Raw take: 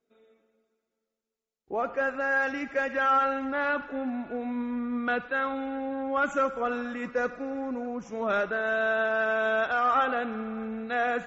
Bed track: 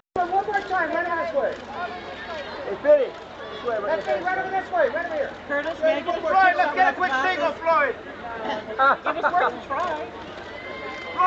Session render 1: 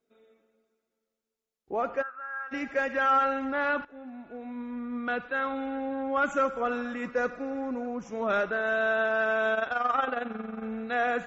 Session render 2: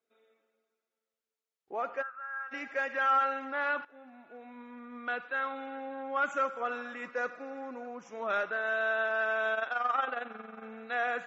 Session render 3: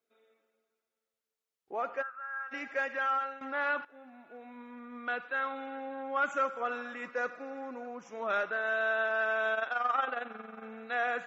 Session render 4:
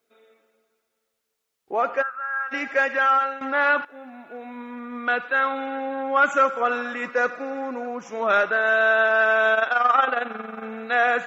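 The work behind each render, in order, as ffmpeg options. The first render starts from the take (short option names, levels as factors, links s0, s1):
-filter_complex "[0:a]asplit=3[s0][s1][s2];[s0]afade=t=out:st=2.01:d=0.02[s3];[s1]bandpass=f=1300:t=q:w=7.6,afade=t=in:st=2.01:d=0.02,afade=t=out:st=2.51:d=0.02[s4];[s2]afade=t=in:st=2.51:d=0.02[s5];[s3][s4][s5]amix=inputs=3:normalize=0,asettb=1/sr,asplit=3[s6][s7][s8];[s6]atrim=end=9.544[s9];[s7]atrim=start=9.54:end=10.63,asetpts=PTS-STARTPTS,afade=t=in:d=0.004:c=qsin,afade=t=out:st=1.086:d=0.004:c=qsin,tremolo=f=22:d=0.667[s10];[s8]atrim=start=10.626[s11];[s9][s10]acrossfade=d=0.004:c1=hsin:c2=qsin[s12];[s12][s11]acrossfade=d=0.004:c1=qsin:c2=hsin,asplit=2[s13][s14];[s13]atrim=end=3.85,asetpts=PTS-STARTPTS,afade=t=out:st=3.846:d=0.004:c=hsin:silence=0.16788[s15];[s14]atrim=start=3.85,asetpts=PTS-STARTPTS,afade=t=in:d=1.84:silence=0.16788[s16];[s15][s16]concat=n=2:v=0:a=1"
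-af "highpass=f=1000:p=1,highshelf=f=4200:g=-7"
-filter_complex "[0:a]asplit=2[s0][s1];[s0]atrim=end=3.41,asetpts=PTS-STARTPTS,afade=t=out:st=2.82:d=0.59:silence=0.237137[s2];[s1]atrim=start=3.41,asetpts=PTS-STARTPTS,afade=t=in:d=0.004:c=hsin:silence=0.237137[s3];[s2][s3]concat=n=2:v=0:a=1"
-af "volume=3.76"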